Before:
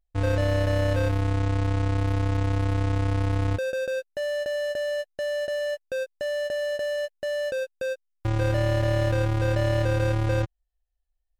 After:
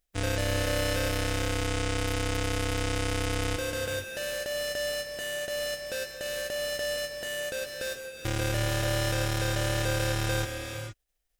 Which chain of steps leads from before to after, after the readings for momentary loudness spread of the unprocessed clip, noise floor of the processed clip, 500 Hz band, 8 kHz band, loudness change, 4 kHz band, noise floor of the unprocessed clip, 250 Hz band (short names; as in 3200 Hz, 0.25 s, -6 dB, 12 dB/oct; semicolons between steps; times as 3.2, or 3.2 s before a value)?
6 LU, -73 dBFS, -5.5 dB, +11.0 dB, -4.0 dB, +6.0 dB, -76 dBFS, -4.0 dB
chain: spectral contrast lowered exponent 0.59; bell 980 Hz -7.5 dB 0.65 oct; notch 4300 Hz, Q 16; non-linear reverb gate 0.49 s rising, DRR 4.5 dB; gain -5 dB